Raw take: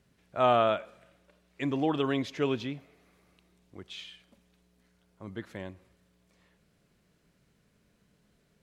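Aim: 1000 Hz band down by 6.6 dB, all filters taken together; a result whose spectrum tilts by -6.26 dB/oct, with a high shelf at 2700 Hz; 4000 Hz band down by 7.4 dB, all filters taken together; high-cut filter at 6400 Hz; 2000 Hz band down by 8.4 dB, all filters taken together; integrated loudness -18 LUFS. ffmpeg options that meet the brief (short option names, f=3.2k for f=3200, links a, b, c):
-af "lowpass=6.4k,equalizer=f=1k:t=o:g=-8,equalizer=f=2k:t=o:g=-6,highshelf=f=2.7k:g=-3.5,equalizer=f=4k:t=o:g=-3.5,volume=15.5dB"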